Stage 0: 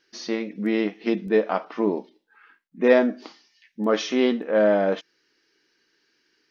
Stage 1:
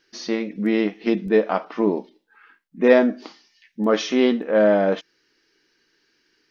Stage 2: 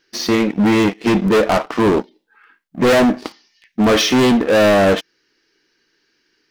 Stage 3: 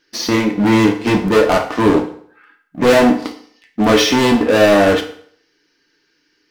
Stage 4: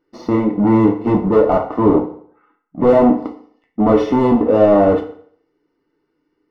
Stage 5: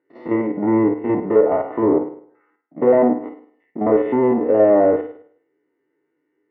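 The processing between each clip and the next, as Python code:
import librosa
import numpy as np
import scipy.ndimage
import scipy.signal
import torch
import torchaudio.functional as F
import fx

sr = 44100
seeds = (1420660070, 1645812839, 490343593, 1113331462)

y1 = fx.low_shelf(x, sr, hz=90.0, db=10.0)
y1 = F.gain(torch.from_numpy(y1), 2.0).numpy()
y2 = fx.leveller(y1, sr, passes=2)
y2 = np.clip(10.0 ** (16.0 / 20.0) * y2, -1.0, 1.0) / 10.0 ** (16.0 / 20.0)
y2 = F.gain(torch.from_numpy(y2), 5.5).numpy()
y3 = fx.rev_fdn(y2, sr, rt60_s=0.58, lf_ratio=0.9, hf_ratio=0.85, size_ms=20.0, drr_db=3.5)
y4 = scipy.signal.savgol_filter(y3, 65, 4, mode='constant')
y5 = fx.spec_steps(y4, sr, hold_ms=50)
y5 = fx.env_lowpass_down(y5, sr, base_hz=1800.0, full_db=-10.5)
y5 = fx.cabinet(y5, sr, low_hz=140.0, low_slope=12, high_hz=2700.0, hz=(190.0, 390.0, 570.0, 1200.0, 1900.0), db=(-8, 5, 3, -5, 9))
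y5 = F.gain(torch.from_numpy(y5), -3.5).numpy()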